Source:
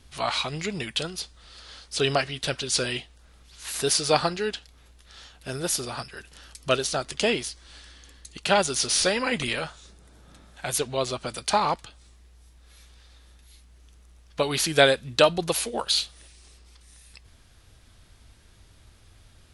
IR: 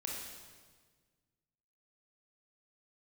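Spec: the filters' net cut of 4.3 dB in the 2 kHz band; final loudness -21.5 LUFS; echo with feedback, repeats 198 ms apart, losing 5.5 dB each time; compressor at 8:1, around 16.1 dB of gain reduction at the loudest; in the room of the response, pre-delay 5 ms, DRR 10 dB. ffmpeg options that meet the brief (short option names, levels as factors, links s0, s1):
-filter_complex "[0:a]equalizer=f=2000:t=o:g=-6,acompressor=threshold=0.0316:ratio=8,aecho=1:1:198|396|594|792|990|1188|1386:0.531|0.281|0.149|0.079|0.0419|0.0222|0.0118,asplit=2[s0][s1];[1:a]atrim=start_sample=2205,adelay=5[s2];[s1][s2]afir=irnorm=-1:irlink=0,volume=0.299[s3];[s0][s3]amix=inputs=2:normalize=0,volume=3.98"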